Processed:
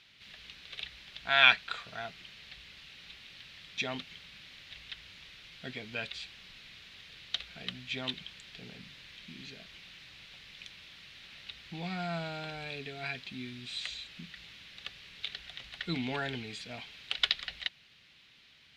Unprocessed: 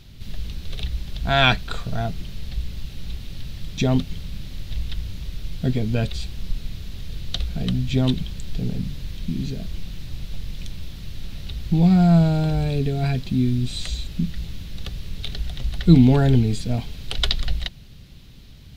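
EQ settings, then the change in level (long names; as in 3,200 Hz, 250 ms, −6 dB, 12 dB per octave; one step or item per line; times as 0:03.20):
resonant band-pass 2,200 Hz, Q 1.4
0.0 dB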